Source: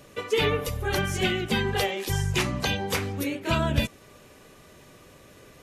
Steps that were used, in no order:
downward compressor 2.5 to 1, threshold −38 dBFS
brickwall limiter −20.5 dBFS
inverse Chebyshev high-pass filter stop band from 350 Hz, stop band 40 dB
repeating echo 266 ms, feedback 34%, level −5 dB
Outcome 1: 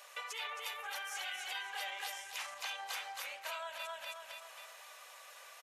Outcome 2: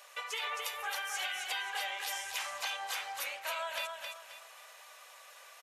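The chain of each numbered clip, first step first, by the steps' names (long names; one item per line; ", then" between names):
repeating echo, then brickwall limiter, then downward compressor, then inverse Chebyshev high-pass filter
inverse Chebyshev high-pass filter, then brickwall limiter, then downward compressor, then repeating echo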